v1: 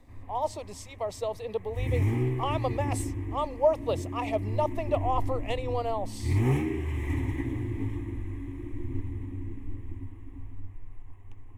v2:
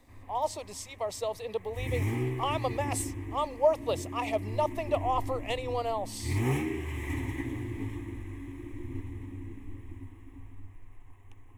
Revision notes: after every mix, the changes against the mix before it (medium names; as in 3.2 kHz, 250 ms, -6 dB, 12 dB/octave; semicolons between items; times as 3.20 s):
master: add tilt EQ +1.5 dB/octave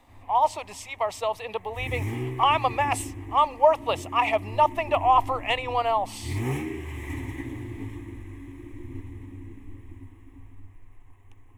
speech: add high-order bell 1.5 kHz +11.5 dB 2.4 oct